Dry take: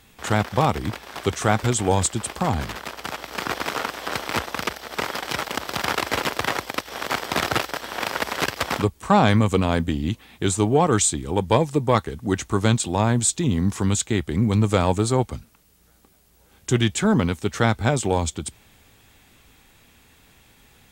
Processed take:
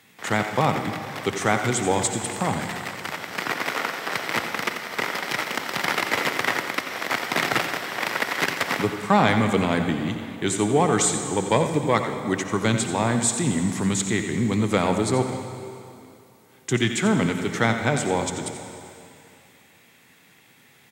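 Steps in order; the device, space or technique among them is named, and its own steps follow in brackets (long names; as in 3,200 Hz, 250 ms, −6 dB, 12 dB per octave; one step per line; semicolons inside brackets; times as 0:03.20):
PA in a hall (high-pass filter 120 Hz 24 dB per octave; parametric band 2,000 Hz +7 dB 0.42 octaves; single-tap delay 88 ms −11 dB; convolution reverb RT60 2.6 s, pre-delay 53 ms, DRR 7.5 dB)
level −2 dB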